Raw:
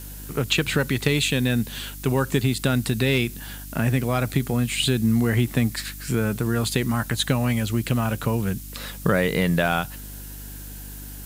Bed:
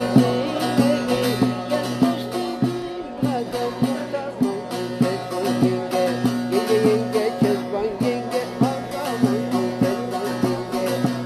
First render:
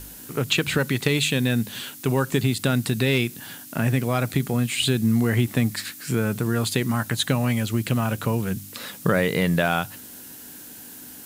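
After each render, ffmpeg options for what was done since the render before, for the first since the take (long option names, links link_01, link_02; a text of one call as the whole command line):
ffmpeg -i in.wav -af "bandreject=frequency=50:width_type=h:width=4,bandreject=frequency=100:width_type=h:width=4,bandreject=frequency=150:width_type=h:width=4,bandreject=frequency=200:width_type=h:width=4" out.wav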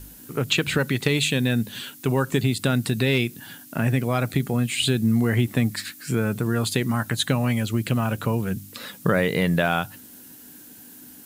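ffmpeg -i in.wav -af "afftdn=noise_reduction=6:noise_floor=-42" out.wav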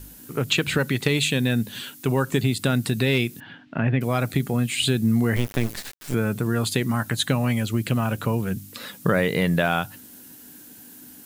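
ffmpeg -i in.wav -filter_complex "[0:a]asettb=1/sr,asplit=3[link_01][link_02][link_03];[link_01]atrim=end=3.404[link_04];[link_02]atrim=start=3.4:end=4.01,asetpts=PTS-STARTPTS,afade=type=in:duration=0.004:curve=qsin,afade=type=out:start_time=0.606:duration=0.004:curve=qsin,lowpass=frequency=3200:width=0.5412,lowpass=frequency=3200:width=1.3066[link_05];[link_03]atrim=start=4.006[link_06];[link_04][link_05]acrossfade=duration=0.004:curve1=hsin:curve2=qsin[link_07];[link_07][link_06]acrossfade=duration=0.004:curve1=qsin:curve2=hsin,asettb=1/sr,asplit=3[link_08][link_09][link_10];[link_08]atrim=end=5.364[link_11];[link_09]atrim=start=5.36:end=6.14,asetpts=PTS-STARTPTS,afade=type=in:duration=0.004:curve=qsin,afade=type=out:start_time=0.776:duration=0.004:curve=qsin,acrusher=bits=3:dc=4:mix=0:aa=0.000001[link_12];[link_10]atrim=start=6.136[link_13];[link_11][link_12]acrossfade=duration=0.004:curve1=hsin:curve2=qsin[link_14];[link_14][link_13]acrossfade=duration=0.004:curve1=qsin:curve2=hsin" out.wav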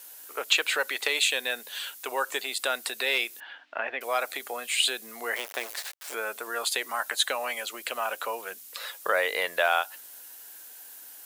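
ffmpeg -i in.wav -af "highpass=frequency=560:width=0.5412,highpass=frequency=560:width=1.3066" out.wav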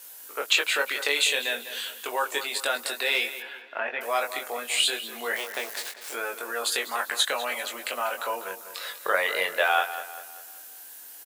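ffmpeg -i in.wav -filter_complex "[0:a]asplit=2[link_01][link_02];[link_02]adelay=21,volume=-4dB[link_03];[link_01][link_03]amix=inputs=2:normalize=0,asplit=2[link_04][link_05];[link_05]adelay=197,lowpass=frequency=3900:poles=1,volume=-12dB,asplit=2[link_06][link_07];[link_07]adelay=197,lowpass=frequency=3900:poles=1,volume=0.46,asplit=2[link_08][link_09];[link_09]adelay=197,lowpass=frequency=3900:poles=1,volume=0.46,asplit=2[link_10][link_11];[link_11]adelay=197,lowpass=frequency=3900:poles=1,volume=0.46,asplit=2[link_12][link_13];[link_13]adelay=197,lowpass=frequency=3900:poles=1,volume=0.46[link_14];[link_04][link_06][link_08][link_10][link_12][link_14]amix=inputs=6:normalize=0" out.wav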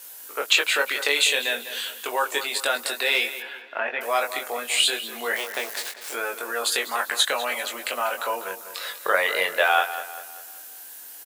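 ffmpeg -i in.wav -af "volume=3dB" out.wav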